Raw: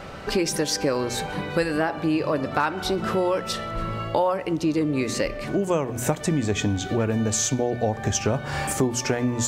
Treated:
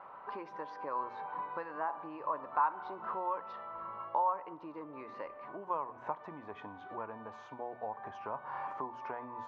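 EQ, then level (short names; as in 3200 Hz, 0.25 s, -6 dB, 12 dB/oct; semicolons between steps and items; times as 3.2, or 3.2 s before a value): band-pass 1000 Hz, Q 7.3; air absorption 280 m; +2.5 dB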